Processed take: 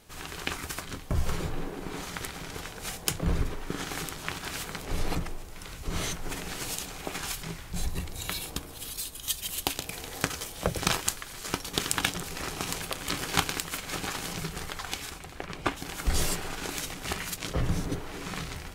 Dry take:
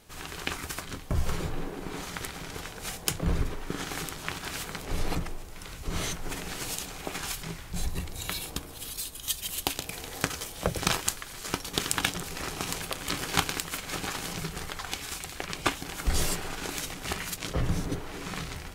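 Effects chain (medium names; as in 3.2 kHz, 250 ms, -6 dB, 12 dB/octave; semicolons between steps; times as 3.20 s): 15.09–15.76 s: treble shelf 2.1 kHz -> 3.2 kHz -11.5 dB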